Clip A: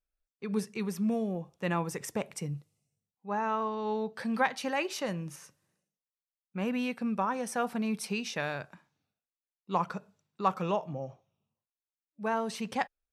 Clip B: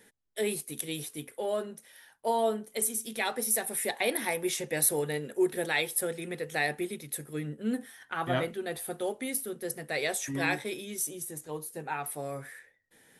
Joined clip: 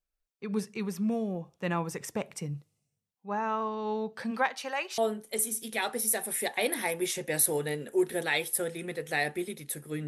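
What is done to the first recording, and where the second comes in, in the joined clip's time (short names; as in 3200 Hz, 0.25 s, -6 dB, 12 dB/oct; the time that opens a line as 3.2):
clip A
4.3–4.98 HPF 250 Hz -> 840 Hz
4.98 switch to clip B from 2.41 s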